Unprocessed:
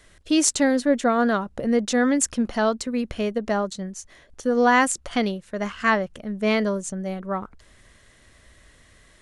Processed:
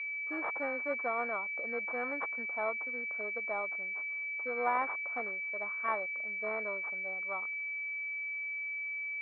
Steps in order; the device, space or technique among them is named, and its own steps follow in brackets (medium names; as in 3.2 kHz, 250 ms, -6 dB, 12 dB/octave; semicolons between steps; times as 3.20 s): toy sound module (decimation joined by straight lines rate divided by 4×; class-D stage that switches slowly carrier 2.3 kHz; cabinet simulation 720–3700 Hz, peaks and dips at 1.2 kHz +5 dB, 2 kHz +3 dB, 3.2 kHz -4 dB); trim -8 dB